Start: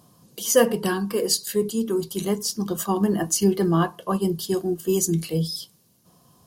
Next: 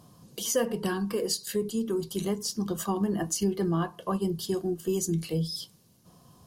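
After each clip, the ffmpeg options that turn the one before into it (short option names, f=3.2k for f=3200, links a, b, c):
-af "highshelf=f=11k:g=-7,acompressor=threshold=-31dB:ratio=2,lowshelf=f=92:g=7.5"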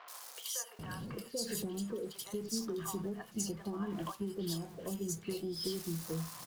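-filter_complex "[0:a]aeval=exprs='val(0)+0.5*0.0112*sgn(val(0))':c=same,acompressor=threshold=-36dB:ratio=6,acrossover=split=710|2800[a][b][c];[c]adelay=80[d];[a]adelay=790[e];[e][b][d]amix=inputs=3:normalize=0"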